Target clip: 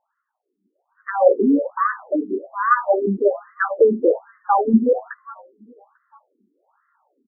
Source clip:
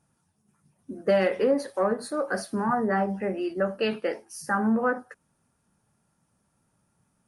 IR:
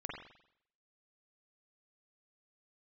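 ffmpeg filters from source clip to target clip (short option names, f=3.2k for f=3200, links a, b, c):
-filter_complex "[0:a]asplit=4[a][b][c][d];[b]adelay=422,afreqshift=-130,volume=-22.5dB[e];[c]adelay=844,afreqshift=-260,volume=-28.7dB[f];[d]adelay=1266,afreqshift=-390,volume=-34.9dB[g];[a][e][f][g]amix=inputs=4:normalize=0,dynaudnorm=f=610:g=3:m=12dB,afftfilt=real='re*between(b*sr/1024,290*pow(1500/290,0.5+0.5*sin(2*PI*1.2*pts/sr))/1.41,290*pow(1500/290,0.5+0.5*sin(2*PI*1.2*pts/sr))*1.41)':imag='im*between(b*sr/1024,290*pow(1500/290,0.5+0.5*sin(2*PI*1.2*pts/sr))/1.41,290*pow(1500/290,0.5+0.5*sin(2*PI*1.2*pts/sr))*1.41)':win_size=1024:overlap=0.75,volume=4dB"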